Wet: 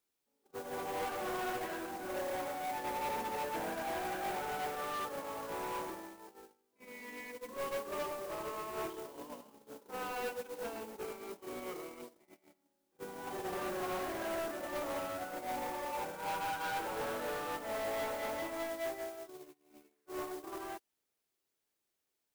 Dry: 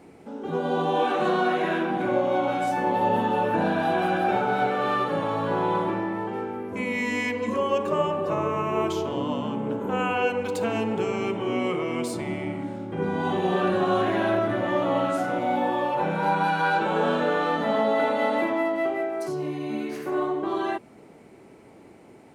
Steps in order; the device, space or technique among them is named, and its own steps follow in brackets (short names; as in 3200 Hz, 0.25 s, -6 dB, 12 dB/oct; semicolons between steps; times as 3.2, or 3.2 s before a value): aircraft radio (BPF 330–2400 Hz; hard clip -26.5 dBFS, distortion -9 dB; white noise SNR 12 dB; gate -28 dBFS, range -41 dB); gain -3 dB